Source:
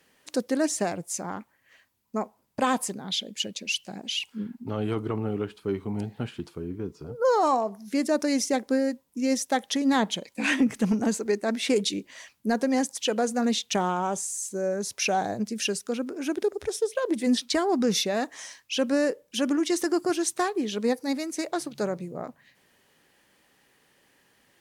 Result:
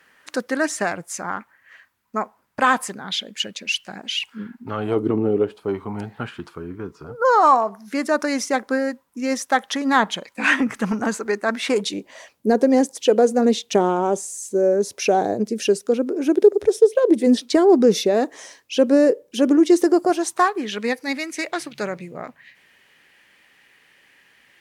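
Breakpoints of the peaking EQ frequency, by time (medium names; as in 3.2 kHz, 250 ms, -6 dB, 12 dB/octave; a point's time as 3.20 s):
peaking EQ +13.5 dB 1.5 oct
4.77 s 1.5 kHz
5.08 s 260 Hz
5.96 s 1.3 kHz
11.60 s 1.3 kHz
12.50 s 410 Hz
19.80 s 410 Hz
20.86 s 2.2 kHz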